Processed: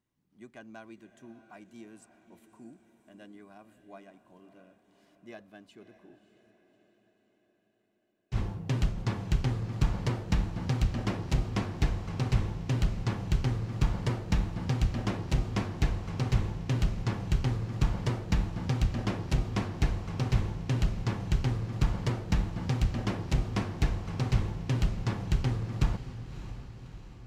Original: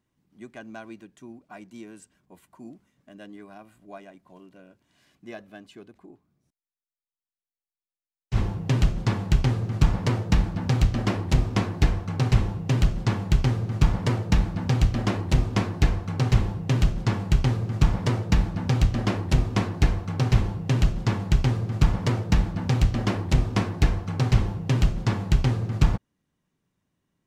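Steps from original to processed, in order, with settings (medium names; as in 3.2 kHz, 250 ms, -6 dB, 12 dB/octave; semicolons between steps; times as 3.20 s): echo that smears into a reverb 601 ms, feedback 56%, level -12.5 dB; trim -7 dB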